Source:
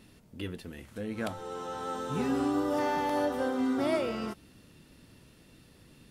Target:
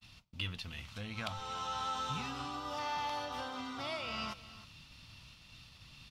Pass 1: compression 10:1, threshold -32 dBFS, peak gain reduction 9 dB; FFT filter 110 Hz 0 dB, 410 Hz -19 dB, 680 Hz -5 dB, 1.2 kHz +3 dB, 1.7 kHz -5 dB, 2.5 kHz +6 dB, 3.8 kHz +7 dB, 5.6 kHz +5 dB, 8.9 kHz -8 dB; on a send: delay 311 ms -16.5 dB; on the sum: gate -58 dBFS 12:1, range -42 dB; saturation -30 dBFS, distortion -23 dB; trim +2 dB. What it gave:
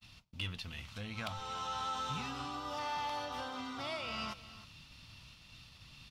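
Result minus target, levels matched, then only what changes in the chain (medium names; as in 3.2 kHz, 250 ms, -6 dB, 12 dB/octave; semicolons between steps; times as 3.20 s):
saturation: distortion +11 dB
change: saturation -23 dBFS, distortion -34 dB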